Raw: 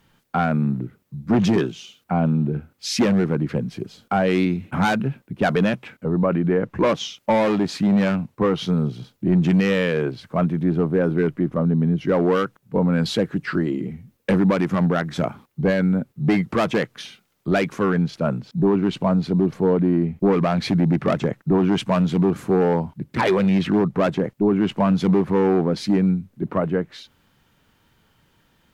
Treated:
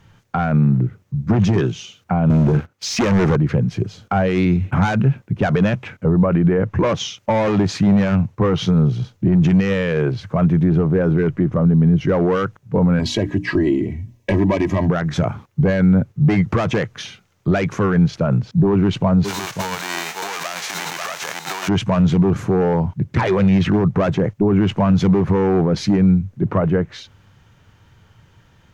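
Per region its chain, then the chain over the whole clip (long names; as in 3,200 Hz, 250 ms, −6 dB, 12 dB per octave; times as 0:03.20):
0:02.30–0:03.36: high-pass filter 330 Hz 6 dB per octave + leveller curve on the samples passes 3
0:12.99–0:14.89: Butterworth band-reject 1,400 Hz, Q 2.9 + mains-hum notches 60/120/180/240/300 Hz + comb filter 3.1 ms, depth 68%
0:19.24–0:21.67: spectral envelope flattened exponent 0.3 + high-pass filter 670 Hz + single-tap delay 544 ms −11.5 dB
whole clip: graphic EQ with 15 bands 100 Hz +11 dB, 250 Hz −5 dB, 6,300 Hz +11 dB; brickwall limiter −16 dBFS; bass and treble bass +2 dB, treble −12 dB; level +6.5 dB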